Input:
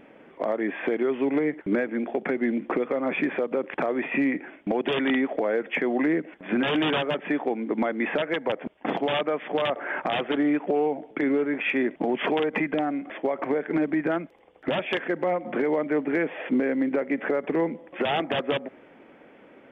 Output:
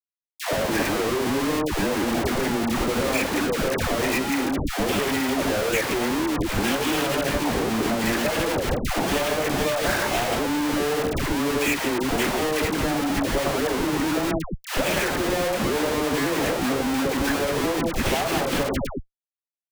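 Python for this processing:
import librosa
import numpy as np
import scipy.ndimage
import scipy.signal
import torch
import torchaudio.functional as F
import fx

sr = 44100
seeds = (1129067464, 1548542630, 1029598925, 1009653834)

y = fx.reverse_delay(x, sr, ms=106, wet_db=-5)
y = fx.schmitt(y, sr, flips_db=-36.5)
y = fx.dispersion(y, sr, late='lows', ms=132.0, hz=750.0)
y = y * 10.0 ** (2.0 / 20.0)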